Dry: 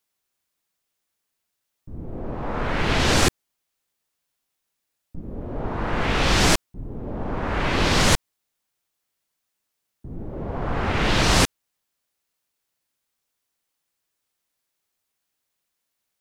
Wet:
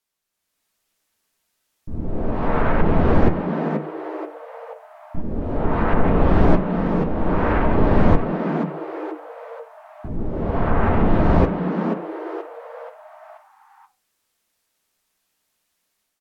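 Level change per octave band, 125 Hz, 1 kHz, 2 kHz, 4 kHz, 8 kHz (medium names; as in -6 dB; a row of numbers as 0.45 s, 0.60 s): +5.5 dB, +3.0 dB, -4.5 dB, -19.0 dB, under -30 dB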